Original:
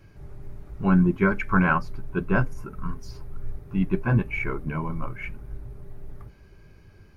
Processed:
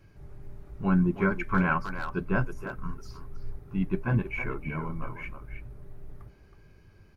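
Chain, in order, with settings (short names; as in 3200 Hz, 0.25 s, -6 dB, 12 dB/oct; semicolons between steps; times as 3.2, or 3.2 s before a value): speakerphone echo 0.32 s, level -8 dB; gain -4.5 dB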